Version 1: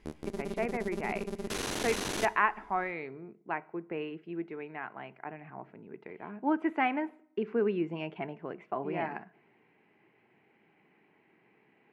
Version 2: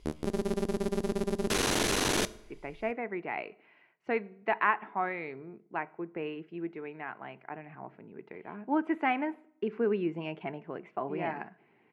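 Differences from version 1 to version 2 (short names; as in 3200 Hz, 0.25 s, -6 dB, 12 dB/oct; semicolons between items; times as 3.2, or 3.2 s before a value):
speech: entry +2.25 s; background +6.5 dB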